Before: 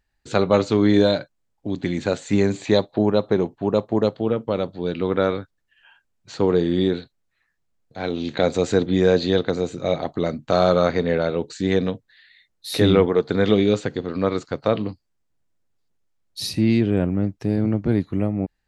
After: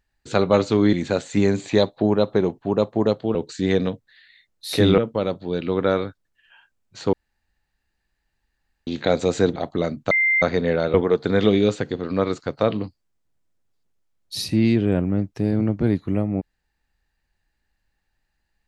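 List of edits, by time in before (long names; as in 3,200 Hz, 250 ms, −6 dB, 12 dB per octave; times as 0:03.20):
0:00.93–0:01.89: remove
0:06.46–0:08.20: fill with room tone
0:08.89–0:09.98: remove
0:10.53–0:10.84: beep over 2,090 Hz −15.5 dBFS
0:11.36–0:12.99: move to 0:04.31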